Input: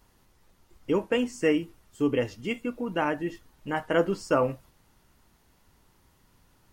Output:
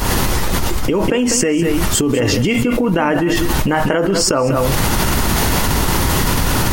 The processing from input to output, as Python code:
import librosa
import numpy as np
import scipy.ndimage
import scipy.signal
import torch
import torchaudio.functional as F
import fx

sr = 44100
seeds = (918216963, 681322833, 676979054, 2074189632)

y = fx.recorder_agc(x, sr, target_db=-15.0, rise_db_per_s=79.0, max_gain_db=30)
y = y + 10.0 ** (-15.0 / 20.0) * np.pad(y, (int(196 * sr / 1000.0), 0))[:len(y)]
y = fx.env_flatten(y, sr, amount_pct=100)
y = F.gain(torch.from_numpy(y), 1.5).numpy()